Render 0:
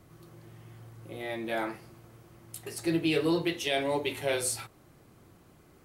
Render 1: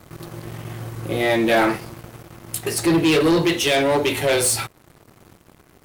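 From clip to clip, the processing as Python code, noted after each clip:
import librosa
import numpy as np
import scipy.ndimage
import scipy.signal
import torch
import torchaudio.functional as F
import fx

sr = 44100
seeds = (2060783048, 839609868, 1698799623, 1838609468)

y = fx.leveller(x, sr, passes=3)
y = fx.rider(y, sr, range_db=10, speed_s=2.0)
y = F.gain(torch.from_numpy(y), 5.0).numpy()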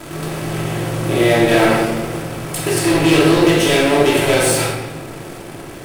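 y = fx.bin_compress(x, sr, power=0.6)
y = fx.room_shoebox(y, sr, seeds[0], volume_m3=960.0, walls='mixed', distance_m=2.9)
y = F.gain(torch.from_numpy(y), -5.0).numpy()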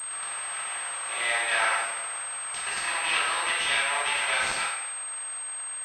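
y = scipy.signal.sosfilt(scipy.signal.butter(4, 950.0, 'highpass', fs=sr, output='sos'), x)
y = fx.pwm(y, sr, carrier_hz=8400.0)
y = F.gain(torch.from_numpy(y), -4.5).numpy()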